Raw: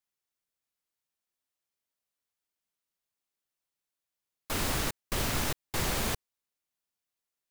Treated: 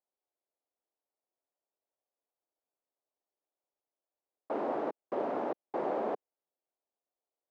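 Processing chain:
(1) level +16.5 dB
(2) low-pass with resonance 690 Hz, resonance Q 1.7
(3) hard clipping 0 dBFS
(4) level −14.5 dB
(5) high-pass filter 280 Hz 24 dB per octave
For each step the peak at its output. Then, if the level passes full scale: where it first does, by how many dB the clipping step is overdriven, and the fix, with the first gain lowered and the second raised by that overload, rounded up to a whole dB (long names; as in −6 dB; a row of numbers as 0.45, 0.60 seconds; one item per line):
−0.5, −3.0, −3.0, −17.5, −20.0 dBFS
no step passes full scale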